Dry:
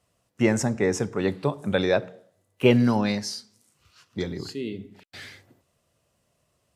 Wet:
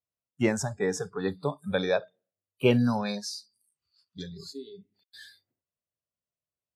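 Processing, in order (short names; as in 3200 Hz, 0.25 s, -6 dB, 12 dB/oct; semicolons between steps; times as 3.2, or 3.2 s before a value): spectral noise reduction 25 dB; gain -3.5 dB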